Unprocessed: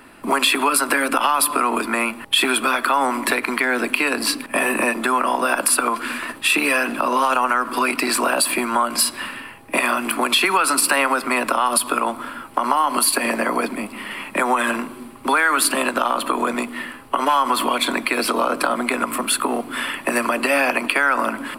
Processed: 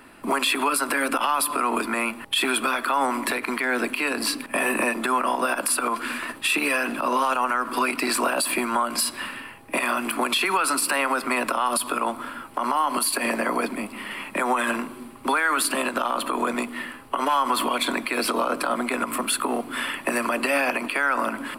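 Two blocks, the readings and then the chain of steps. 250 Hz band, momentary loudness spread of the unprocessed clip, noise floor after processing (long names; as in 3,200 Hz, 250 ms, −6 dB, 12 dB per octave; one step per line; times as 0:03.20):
−3.5 dB, 8 LU, −42 dBFS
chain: brickwall limiter −9.5 dBFS, peak gain reduction 7.5 dB
level −3 dB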